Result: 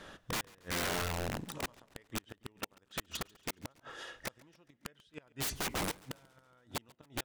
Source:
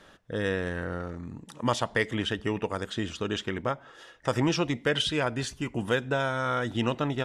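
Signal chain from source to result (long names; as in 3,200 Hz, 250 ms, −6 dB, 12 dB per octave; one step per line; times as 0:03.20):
gate with flip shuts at −19 dBFS, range −41 dB
wrap-around overflow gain 32.5 dB
feedback echo with a swinging delay time 139 ms, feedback 54%, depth 52 cents, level −23.5 dB
level +3 dB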